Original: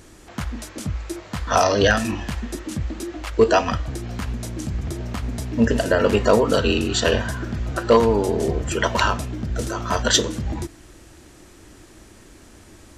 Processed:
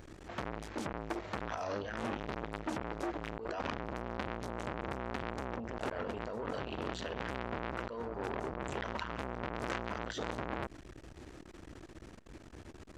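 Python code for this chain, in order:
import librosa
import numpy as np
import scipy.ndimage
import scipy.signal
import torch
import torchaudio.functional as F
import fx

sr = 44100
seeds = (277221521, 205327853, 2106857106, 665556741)

y = fx.over_compress(x, sr, threshold_db=-26.0, ratio=-1.0)
y = fx.peak_eq(y, sr, hz=12000.0, db=-15.0, octaves=1.7)
y = fx.transformer_sat(y, sr, knee_hz=2400.0)
y = y * librosa.db_to_amplitude(-4.5)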